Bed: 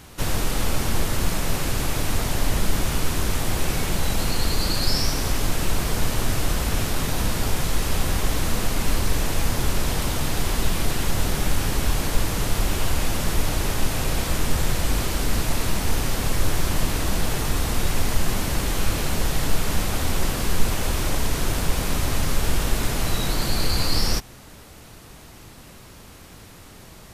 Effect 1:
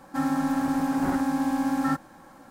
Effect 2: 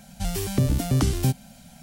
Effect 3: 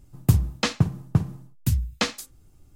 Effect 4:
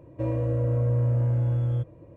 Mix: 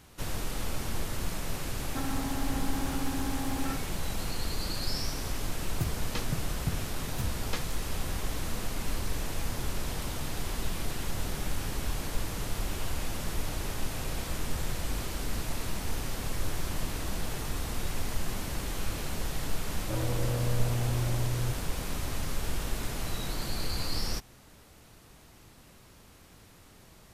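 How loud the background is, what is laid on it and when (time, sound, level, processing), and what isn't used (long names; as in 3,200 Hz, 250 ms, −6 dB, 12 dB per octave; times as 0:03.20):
bed −10.5 dB
0:01.81: mix in 1 −3.5 dB + downward compressor, threshold −29 dBFS
0:05.52: mix in 3 −13.5 dB
0:19.70: mix in 4 −6 dB + wavefolder on the positive side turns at −22.5 dBFS
not used: 2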